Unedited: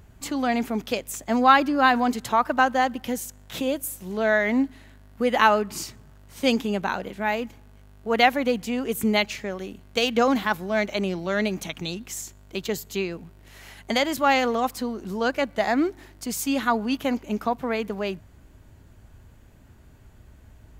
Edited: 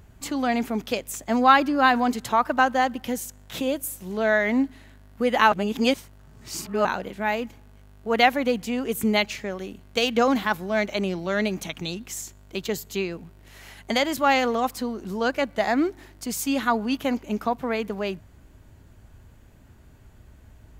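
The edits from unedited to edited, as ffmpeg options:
-filter_complex "[0:a]asplit=3[a][b][c];[a]atrim=end=5.522[d];[b]atrim=start=5.518:end=6.852,asetpts=PTS-STARTPTS,areverse[e];[c]atrim=start=6.848[f];[d][e]acrossfade=d=0.004:c1=hsin:c2=hsin[g];[g][f]acrossfade=d=0.004:c1=hsin:c2=hsin"

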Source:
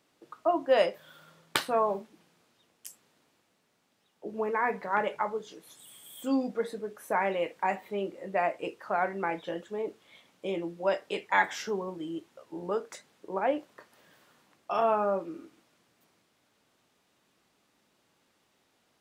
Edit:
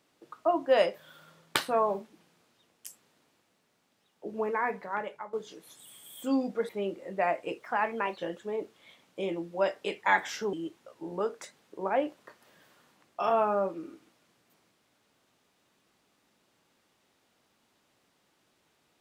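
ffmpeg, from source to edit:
-filter_complex "[0:a]asplit=6[a][b][c][d][e][f];[a]atrim=end=5.33,asetpts=PTS-STARTPTS,afade=t=out:st=4.44:d=0.89:silence=0.188365[g];[b]atrim=start=5.33:end=6.692,asetpts=PTS-STARTPTS,afade=t=in:d=0.004:c=hsin:silence=0.188365[h];[c]atrim=start=7.848:end=8.764[i];[d]atrim=start=8.76:end=9.44,asetpts=PTS-STARTPTS,asetrate=51597,aresample=44100[j];[e]atrim=start=9.436:end=11.792[k];[f]atrim=start=12.038[l];[g][h]concat=n=2:v=0:a=1[m];[m][i]acrossfade=d=0.004:c1=hsin:c2=hsin[n];[n][j]acrossfade=d=0.004:c1=hsin:c2=hsin[o];[o][k]acrossfade=d=0.004:c1=hsin:c2=hsin[p];[p][l]acrossfade=d=0.004:c1=hsin:c2=hsin"

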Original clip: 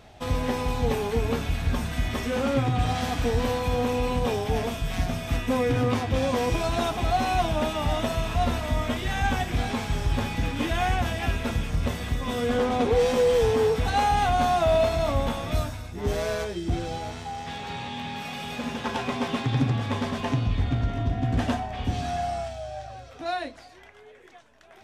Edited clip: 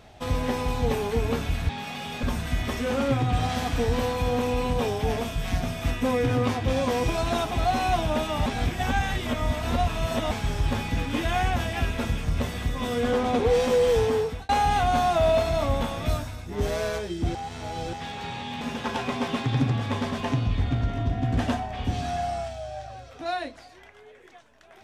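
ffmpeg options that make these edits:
-filter_complex "[0:a]asplit=9[a][b][c][d][e][f][g][h][i];[a]atrim=end=1.692[j];[b]atrim=start=18.068:end=18.612[k];[c]atrim=start=1.688:end=7.922[l];[d]atrim=start=7.918:end=9.772,asetpts=PTS-STARTPTS,areverse[m];[e]atrim=start=9.768:end=13.95,asetpts=PTS-STARTPTS,afade=t=out:st=3.602:d=0.58:c=qsin[n];[f]atrim=start=13.95:end=16.812,asetpts=PTS-STARTPTS,afade=t=in:d=0.004:c=hsin[o];[g]atrim=start=16.808:end=17.392,asetpts=PTS-STARTPTS,areverse[p];[h]atrim=start=17.388:end=18.072[q];[i]atrim=start=18.608[r];[j][k]acrossfade=d=0.004:c1=hsin:c2=hsin[s];[s][l]acrossfade=d=0.004:c1=hsin:c2=hsin[t];[t][m]acrossfade=d=0.004:c1=hsin:c2=hsin[u];[n][o]concat=n=2:v=0:a=1[v];[u][v]acrossfade=d=0.004:c1=hsin:c2=hsin[w];[w][p]acrossfade=d=0.004:c1=hsin:c2=hsin[x];[x][q]acrossfade=d=0.004:c1=hsin:c2=hsin[y];[y][r]acrossfade=d=0.004:c1=hsin:c2=hsin"

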